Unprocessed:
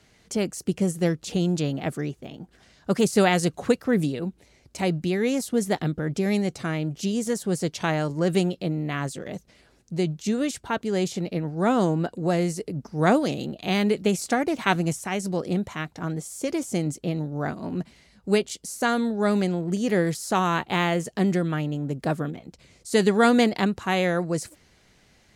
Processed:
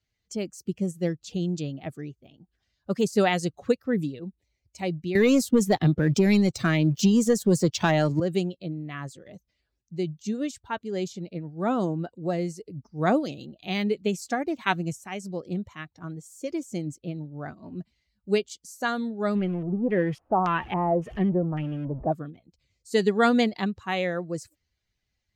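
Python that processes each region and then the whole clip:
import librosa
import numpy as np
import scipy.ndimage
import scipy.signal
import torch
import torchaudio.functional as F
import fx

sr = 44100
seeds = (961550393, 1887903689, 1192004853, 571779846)

y = fx.chain(x, sr, fx.leveller(passes=2),
    fx.band_squash(depth_pct=70), at=(5.15, 8.2))
y = fx.chain(y, sr, fx.zero_step(step_db=-28.5),
    fx.band_shelf(hz=5500.0, db=-15.0, octaves=1.3),
    fx.filter_lfo_lowpass(shape='square', hz=1.8, low_hz=760.0, high_hz=5900.0, q=1.5), at=(19.35, 22.12))
y = fx.bin_expand(y, sr, power=1.5)
y = fx.peak_eq(y, sr, hz=10000.0, db=-9.0, octaves=0.43)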